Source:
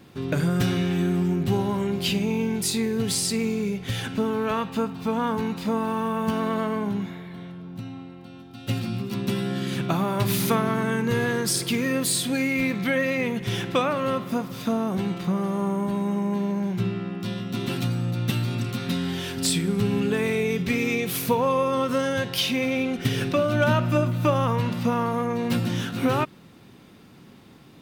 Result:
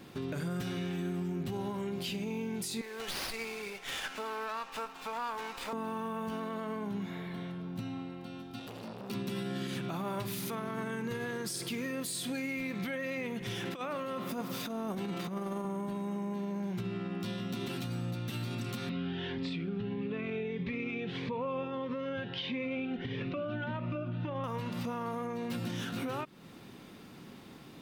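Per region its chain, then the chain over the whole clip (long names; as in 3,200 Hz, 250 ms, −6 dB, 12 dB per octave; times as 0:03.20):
0:02.81–0:05.73: high-pass filter 840 Hz + windowed peak hold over 5 samples
0:08.59–0:09.10: comb filter 4.8 ms, depth 33% + downward compressor, threshold −35 dBFS + saturating transformer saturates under 880 Hz
0:13.65–0:15.65: high-pass filter 150 Hz + high-shelf EQ 12,000 Hz +4 dB + compressor whose output falls as the input rises −28 dBFS, ratio −0.5
0:18.89–0:24.44: low-pass filter 3,200 Hz 24 dB per octave + phaser whose notches keep moving one way rising 1.6 Hz
whole clip: parametric band 90 Hz −5 dB 1.5 octaves; downward compressor 3 to 1, threshold −34 dBFS; brickwall limiter −28 dBFS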